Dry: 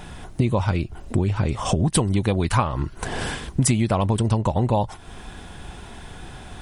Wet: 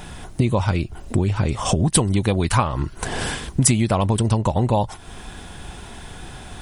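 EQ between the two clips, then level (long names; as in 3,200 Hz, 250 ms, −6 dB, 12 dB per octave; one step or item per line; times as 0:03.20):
high-shelf EQ 4,500 Hz +5 dB
+1.5 dB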